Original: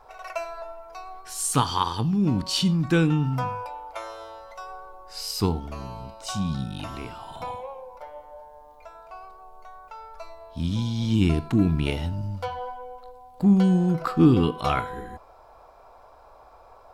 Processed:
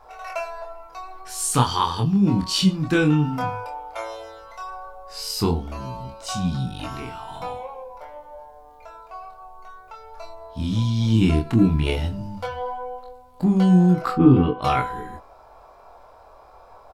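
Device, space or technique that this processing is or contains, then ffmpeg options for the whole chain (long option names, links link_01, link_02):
double-tracked vocal: -filter_complex "[0:a]asplit=3[link_01][link_02][link_03];[link_01]afade=type=out:start_time=14.15:duration=0.02[link_04];[link_02]lowpass=1900,afade=type=in:start_time=14.15:duration=0.02,afade=type=out:start_time=14.61:duration=0.02[link_05];[link_03]afade=type=in:start_time=14.61:duration=0.02[link_06];[link_04][link_05][link_06]amix=inputs=3:normalize=0,asplit=2[link_07][link_08];[link_08]adelay=16,volume=-12dB[link_09];[link_07][link_09]amix=inputs=2:normalize=0,flanger=delay=22.5:depth=4.4:speed=0.14,volume=5.5dB"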